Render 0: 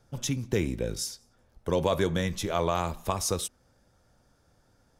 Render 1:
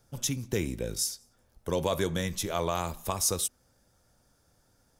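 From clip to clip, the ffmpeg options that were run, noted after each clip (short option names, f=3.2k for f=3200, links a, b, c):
-af "highshelf=f=6.4k:g=12,volume=-3dB"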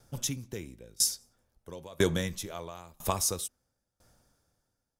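-af "aeval=exprs='val(0)*pow(10,-26*if(lt(mod(1*n/s,1),2*abs(1)/1000),1-mod(1*n/s,1)/(2*abs(1)/1000),(mod(1*n/s,1)-2*abs(1)/1000)/(1-2*abs(1)/1000))/20)':c=same,volume=5dB"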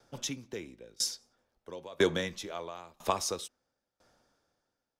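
-filter_complex "[0:a]acrossover=split=230 5800:gain=0.224 1 0.158[a][b][c];[a][b][c]amix=inputs=3:normalize=0,volume=1.5dB"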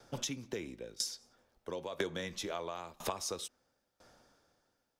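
-af "acompressor=threshold=-40dB:ratio=5,volume=5dB"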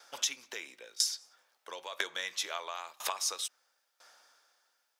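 -af "highpass=1.1k,volume=7dB"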